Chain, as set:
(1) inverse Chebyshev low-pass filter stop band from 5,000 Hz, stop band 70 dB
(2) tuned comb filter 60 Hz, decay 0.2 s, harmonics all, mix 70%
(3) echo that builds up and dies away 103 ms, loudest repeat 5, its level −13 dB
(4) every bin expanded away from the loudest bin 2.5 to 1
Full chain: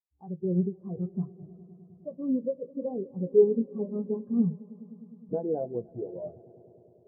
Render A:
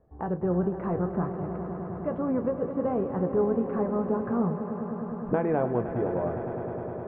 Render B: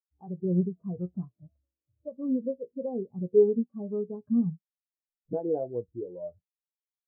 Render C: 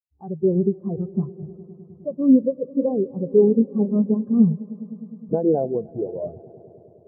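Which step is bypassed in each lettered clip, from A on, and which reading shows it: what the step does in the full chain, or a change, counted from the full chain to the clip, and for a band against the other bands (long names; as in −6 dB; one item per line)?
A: 4, 1 kHz band +13.5 dB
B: 3, change in momentary loudness spread −2 LU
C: 2, 250 Hz band +3.0 dB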